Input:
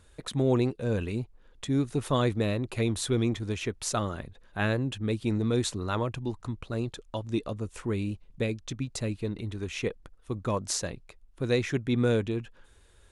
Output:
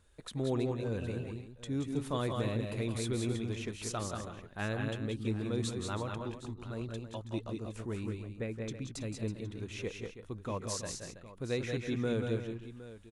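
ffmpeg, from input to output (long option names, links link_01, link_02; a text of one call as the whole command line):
ffmpeg -i in.wav -filter_complex "[0:a]asettb=1/sr,asplit=3[link_01][link_02][link_03];[link_01]atrim=end=8.064[link_04];[link_02]atrim=start=8.06:end=8.68,asetpts=PTS-STARTPTS,afade=type=in:duration=0.004:curve=qsin,afade=type=out:start_time=0.616:duration=0.004:curve=qsin,highshelf=frequency=2500:width_type=q:width=1.5:gain=-7.5[link_05];[link_03]atrim=start=8.676[link_06];[link_04][link_05]acrossfade=duration=0.004:curve1=hsin:curve2=qsin[link_07];[link_07][link_06]acrossfade=duration=0.004:curve1=qsin:curve2=hsin,asplit=2[link_08][link_09];[link_09]aecho=0:1:170|188|325|764:0.335|0.562|0.251|0.168[link_10];[link_08][link_10]amix=inputs=2:normalize=0,volume=-8.5dB" out.wav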